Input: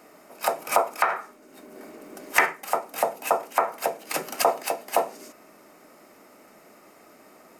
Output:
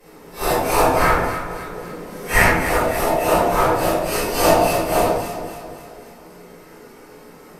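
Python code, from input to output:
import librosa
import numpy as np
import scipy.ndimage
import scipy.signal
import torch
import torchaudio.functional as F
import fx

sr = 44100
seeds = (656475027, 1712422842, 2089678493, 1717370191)

p1 = fx.phase_scramble(x, sr, seeds[0], window_ms=200)
p2 = fx.peak_eq(p1, sr, hz=130.0, db=-13.0, octaves=0.51)
p3 = fx.sample_hold(p2, sr, seeds[1], rate_hz=1100.0, jitter_pct=20)
p4 = p2 + (p3 * 10.0 ** (-8.5 / 20.0))
p5 = fx.pitch_keep_formants(p4, sr, semitones=-6.0)
p6 = fx.echo_alternate(p5, sr, ms=136, hz=1000.0, feedback_pct=70, wet_db=-7.5)
p7 = fx.room_shoebox(p6, sr, seeds[2], volume_m3=77.0, walls='mixed', distance_m=3.6)
y = p7 * 10.0 ** (-5.0 / 20.0)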